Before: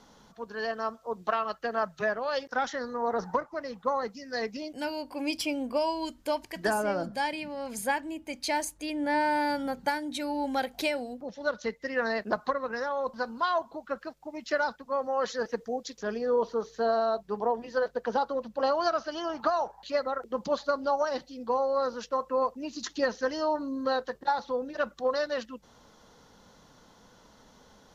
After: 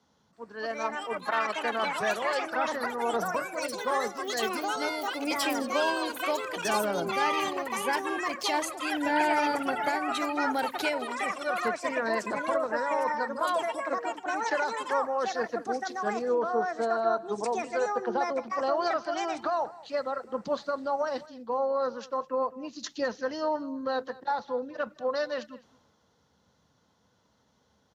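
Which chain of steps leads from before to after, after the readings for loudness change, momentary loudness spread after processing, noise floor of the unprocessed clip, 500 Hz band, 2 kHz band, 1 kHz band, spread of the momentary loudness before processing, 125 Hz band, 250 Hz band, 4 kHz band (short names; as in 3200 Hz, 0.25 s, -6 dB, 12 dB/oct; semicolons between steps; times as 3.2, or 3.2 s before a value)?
+1.0 dB, 6 LU, -59 dBFS, 0.0 dB, +2.5 dB, +2.0 dB, 7 LU, n/a, -0.5 dB, +2.5 dB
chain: HPF 77 Hz 24 dB/oct; high shelf 7100 Hz -5.5 dB; limiter -20 dBFS, peak gain reduction 6 dB; echo 0.208 s -18 dB; echoes that change speed 0.329 s, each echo +5 st, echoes 3; three-band expander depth 40%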